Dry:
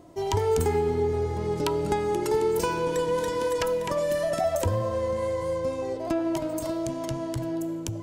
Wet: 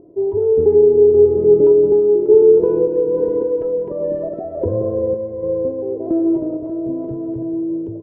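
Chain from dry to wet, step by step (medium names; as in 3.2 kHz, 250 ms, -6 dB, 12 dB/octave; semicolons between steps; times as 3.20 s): bass shelf 110 Hz -6 dB; in parallel at +1 dB: peak limiter -19 dBFS, peak gain reduction 8.5 dB; on the sum: upward compressor, threshold -41 dBFS; random-step tremolo; resonant low-pass 420 Hz, resonance Q 4.9; on a send: feedback delay 173 ms, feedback 54%, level -13.5 dB; on the sum: endings held to a fixed fall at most 210 dB/s; trim -1 dB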